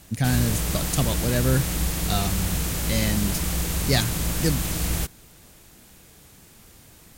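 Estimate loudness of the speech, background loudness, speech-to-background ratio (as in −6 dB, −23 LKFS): −27.0 LKFS, −26.0 LKFS, −1.0 dB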